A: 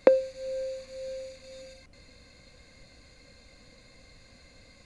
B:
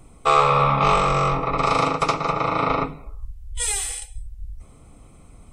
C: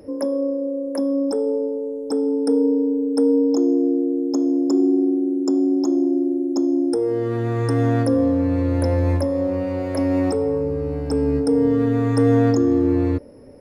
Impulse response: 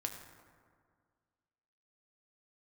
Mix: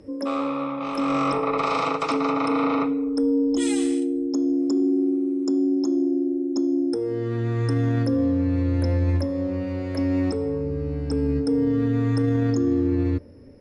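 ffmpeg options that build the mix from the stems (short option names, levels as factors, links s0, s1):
-filter_complex "[1:a]highpass=f=310:p=1,volume=0.794,afade=t=in:st=0.97:d=0.27:silence=0.237137,afade=t=out:st=3.59:d=0.45:silence=0.421697,asplit=2[s0][s1];[s1]volume=0.106[s2];[2:a]equalizer=f=720:t=o:w=1.8:g=-9.5,volume=0.944,asplit=2[s3][s4];[s4]volume=0.0891[s5];[3:a]atrim=start_sample=2205[s6];[s2][s5]amix=inputs=2:normalize=0[s7];[s7][s6]afir=irnorm=-1:irlink=0[s8];[s0][s3][s8]amix=inputs=3:normalize=0,lowpass=6200,alimiter=limit=0.188:level=0:latency=1:release=14"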